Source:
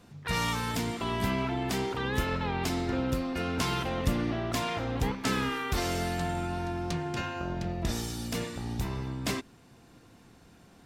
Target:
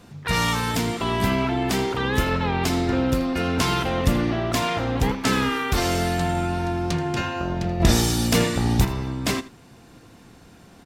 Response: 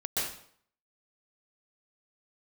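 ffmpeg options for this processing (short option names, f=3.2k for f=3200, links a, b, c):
-filter_complex "[0:a]asettb=1/sr,asplit=3[a][b][c];[a]atrim=end=7.804[d];[b]atrim=start=7.8:end=8.85,asetpts=PTS-STARTPTS,afade=t=in:d=0.004:c=qsin,afade=t=out:st=1.046:d=0.004:c=qsin,acontrast=65[e];[c]atrim=start=8.846[f];[d][e]acrossfade=d=0.004:c1=hsin:c2=qsin[g];[g][f]acrossfade=d=0.004:c1=qsin:c2=hsin,aecho=1:1:80:0.15,volume=7.5dB"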